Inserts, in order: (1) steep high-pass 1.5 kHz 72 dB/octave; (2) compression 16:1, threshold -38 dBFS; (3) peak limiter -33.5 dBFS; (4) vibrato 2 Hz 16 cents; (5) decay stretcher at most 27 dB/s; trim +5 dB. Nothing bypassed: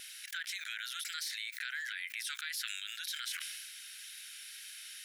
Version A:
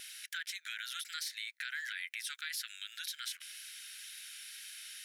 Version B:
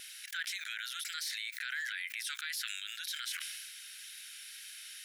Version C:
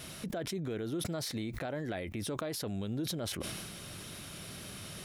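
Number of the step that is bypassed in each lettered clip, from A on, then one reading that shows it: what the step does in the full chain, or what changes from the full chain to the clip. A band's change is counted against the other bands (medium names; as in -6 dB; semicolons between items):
5, crest factor change -2.5 dB; 2, mean gain reduction 2.0 dB; 1, 1 kHz band +9.5 dB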